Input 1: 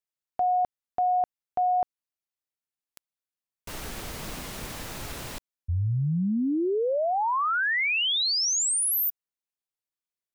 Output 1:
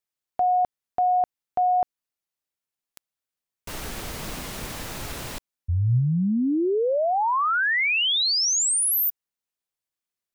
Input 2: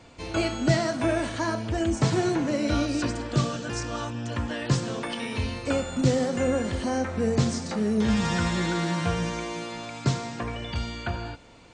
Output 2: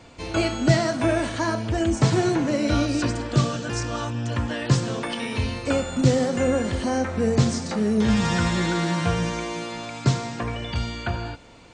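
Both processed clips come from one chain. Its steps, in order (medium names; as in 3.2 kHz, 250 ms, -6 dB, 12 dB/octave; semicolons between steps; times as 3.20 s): dynamic bell 120 Hz, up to +4 dB, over -41 dBFS, Q 6.6; trim +3 dB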